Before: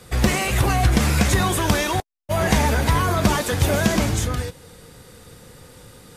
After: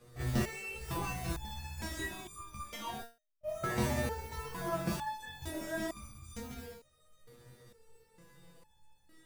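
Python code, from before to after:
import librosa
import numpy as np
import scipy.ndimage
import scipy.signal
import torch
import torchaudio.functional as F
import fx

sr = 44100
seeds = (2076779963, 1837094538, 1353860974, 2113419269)

y = fx.tilt_shelf(x, sr, db=3.5, hz=1400.0)
y = fx.mod_noise(y, sr, seeds[0], snr_db=21)
y = fx.stretch_grains(y, sr, factor=1.5, grain_ms=137.0)
y = fx.room_early_taps(y, sr, ms=(15, 28), db=(-4.0, -6.0))
y = fx.resonator_held(y, sr, hz=2.2, low_hz=120.0, high_hz=1200.0)
y = y * librosa.db_to_amplitude(-4.5)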